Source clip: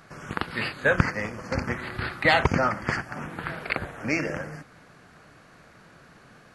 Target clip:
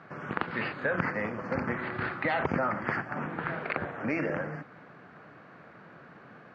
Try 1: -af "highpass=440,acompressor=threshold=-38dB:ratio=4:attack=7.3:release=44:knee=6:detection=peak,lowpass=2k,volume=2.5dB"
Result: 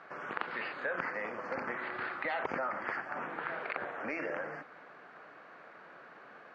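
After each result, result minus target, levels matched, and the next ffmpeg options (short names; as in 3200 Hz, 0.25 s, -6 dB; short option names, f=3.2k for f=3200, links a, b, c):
125 Hz band -13.0 dB; compressor: peak gain reduction +5.5 dB
-af "highpass=140,acompressor=threshold=-38dB:ratio=4:attack=7.3:release=44:knee=6:detection=peak,lowpass=2k,volume=2.5dB"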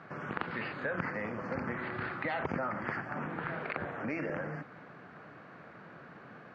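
compressor: peak gain reduction +6 dB
-af "highpass=140,acompressor=threshold=-30dB:ratio=4:attack=7.3:release=44:knee=6:detection=peak,lowpass=2k,volume=2.5dB"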